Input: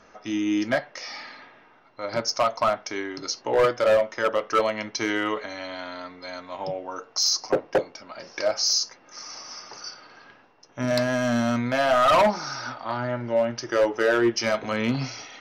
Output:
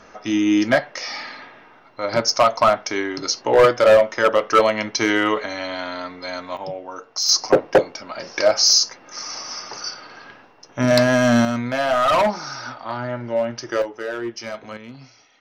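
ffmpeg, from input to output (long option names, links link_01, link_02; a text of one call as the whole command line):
ffmpeg -i in.wav -af "asetnsamples=nb_out_samples=441:pad=0,asendcmd='6.57 volume volume 0.5dB;7.29 volume volume 8dB;11.45 volume volume 1dB;13.82 volume volume -7dB;14.77 volume volume -14.5dB',volume=7dB" out.wav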